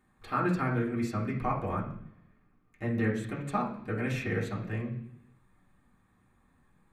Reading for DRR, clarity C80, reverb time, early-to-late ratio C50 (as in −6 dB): −8.5 dB, 11.5 dB, 0.70 s, 7.5 dB